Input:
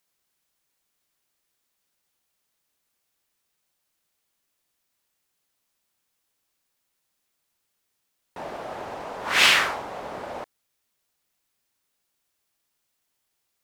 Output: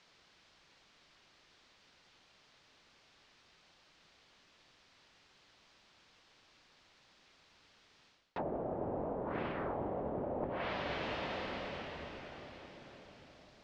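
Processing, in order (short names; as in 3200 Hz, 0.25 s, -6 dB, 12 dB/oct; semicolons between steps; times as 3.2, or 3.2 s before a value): limiter -13.5 dBFS, peak gain reduction 10 dB; on a send at -16.5 dB: low shelf 470 Hz +8.5 dB + reverb RT60 5.4 s, pre-delay 21 ms; on the sum: treble ducked by the level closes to 450 Hz, closed at -33 dBFS; reverse; compressor 20:1, threshold -51 dBFS, peak gain reduction 17.5 dB; reverse; LPF 4900 Hz 24 dB/oct; gain +16.5 dB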